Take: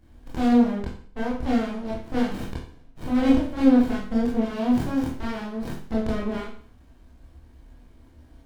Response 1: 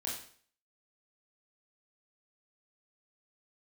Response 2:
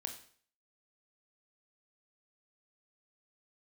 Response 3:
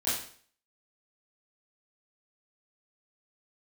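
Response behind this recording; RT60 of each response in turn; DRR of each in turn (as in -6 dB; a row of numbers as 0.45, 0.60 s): 1; 0.50, 0.50, 0.50 s; -5.0, 4.0, -13.5 dB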